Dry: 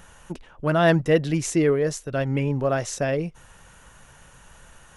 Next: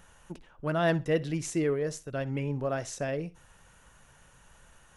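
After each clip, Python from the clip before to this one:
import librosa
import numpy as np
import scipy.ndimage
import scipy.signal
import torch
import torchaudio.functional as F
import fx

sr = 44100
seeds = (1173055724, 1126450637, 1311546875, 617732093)

y = fx.echo_feedback(x, sr, ms=63, feedback_pct=21, wet_db=-19.5)
y = y * 10.0 ** (-8.0 / 20.0)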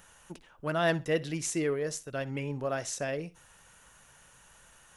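y = fx.tilt_eq(x, sr, slope=1.5)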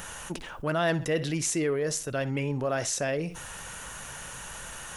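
y = fx.env_flatten(x, sr, amount_pct=50)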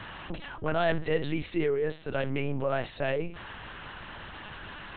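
y = fx.lpc_vocoder(x, sr, seeds[0], excitation='pitch_kept', order=8)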